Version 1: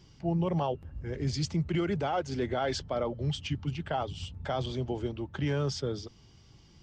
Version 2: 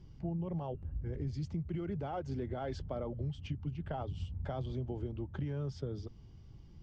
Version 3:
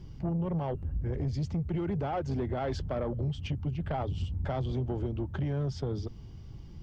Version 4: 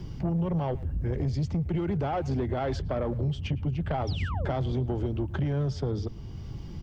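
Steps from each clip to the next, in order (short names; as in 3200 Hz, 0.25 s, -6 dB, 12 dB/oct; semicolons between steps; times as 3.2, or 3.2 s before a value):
tilt -3 dB/oct; compressor, threshold -28 dBFS, peak gain reduction 10.5 dB; gain -6.5 dB
soft clip -33.5 dBFS, distortion -16 dB; gain +8.5 dB
painted sound fall, 4.07–4.55, 230–5900 Hz -44 dBFS; speakerphone echo 0.11 s, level -19 dB; three-band squash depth 40%; gain +3 dB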